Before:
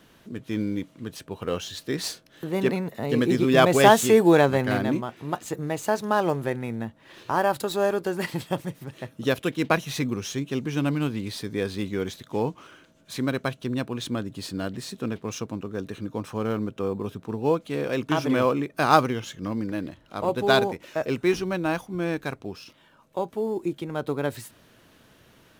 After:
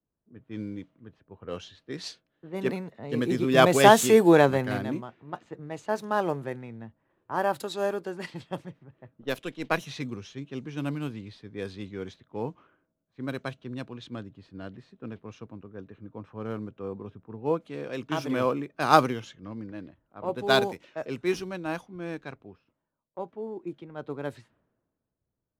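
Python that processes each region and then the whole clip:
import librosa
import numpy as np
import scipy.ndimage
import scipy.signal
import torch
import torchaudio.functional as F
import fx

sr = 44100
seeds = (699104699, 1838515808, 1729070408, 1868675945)

y = fx.chain(x, sr, fx.halfwave_gain(db=-3.0),
    fx.peak_eq(hz=92.0, db=-10.5, octaves=0.91), at=(9.2, 9.81))
y = fx.env_lowpass(y, sr, base_hz=850.0, full_db=-21.0)
y = fx.band_widen(y, sr, depth_pct=70)
y = y * 10.0 ** (-6.5 / 20.0)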